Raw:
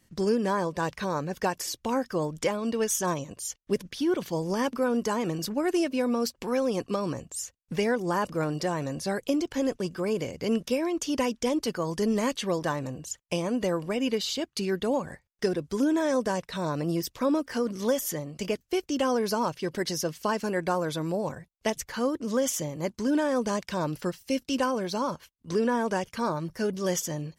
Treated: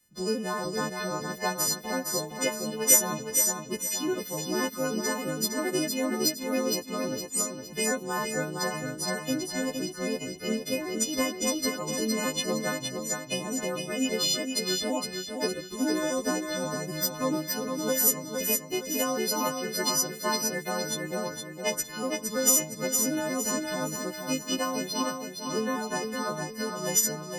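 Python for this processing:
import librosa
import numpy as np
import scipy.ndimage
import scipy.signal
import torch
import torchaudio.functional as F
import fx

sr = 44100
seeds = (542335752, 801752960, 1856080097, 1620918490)

y = fx.freq_snap(x, sr, grid_st=3)
y = fx.echo_feedback(y, sr, ms=463, feedback_pct=50, wet_db=-3.5)
y = fx.upward_expand(y, sr, threshold_db=-35.0, expansion=1.5)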